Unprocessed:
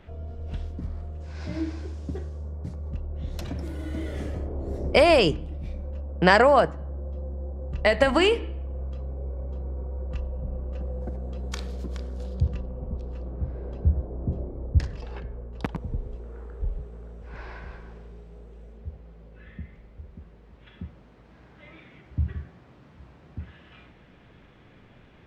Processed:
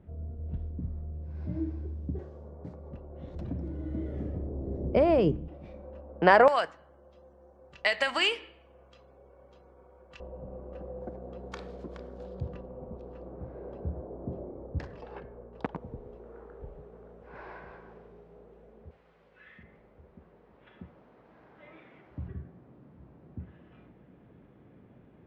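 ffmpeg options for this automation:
-af "asetnsamples=n=441:p=0,asendcmd='2.19 bandpass f 550;3.35 bandpass f 190;5.48 bandpass f 710;6.48 bandpass f 3400;10.2 bandpass f 640;18.91 bandpass f 1800;19.63 bandpass f 670;22.28 bandpass f 260',bandpass=f=140:t=q:w=0.6:csg=0"

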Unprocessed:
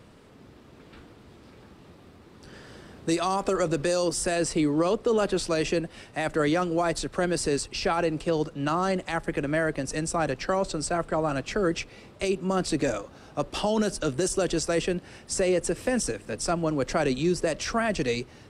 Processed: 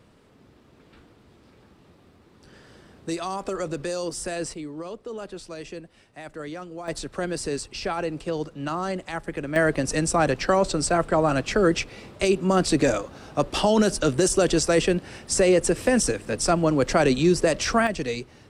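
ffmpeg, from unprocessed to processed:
-af "asetnsamples=n=441:p=0,asendcmd='4.54 volume volume -11.5dB;6.88 volume volume -2.5dB;9.56 volume volume 5.5dB;17.87 volume volume -1.5dB',volume=-4dB"

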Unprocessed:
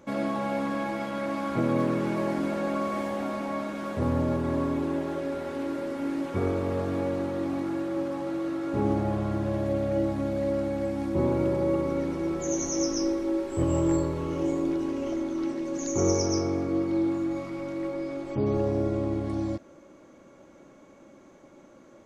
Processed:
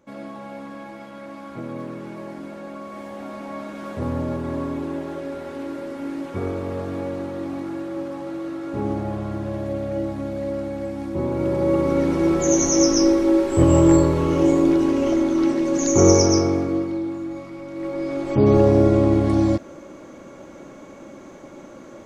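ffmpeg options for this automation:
-af "volume=23dB,afade=t=in:st=2.85:d=1.04:silence=0.421697,afade=t=in:st=11.3:d=0.96:silence=0.316228,afade=t=out:st=16.17:d=0.83:silence=0.266073,afade=t=in:st=17.7:d=0.82:silence=0.237137"

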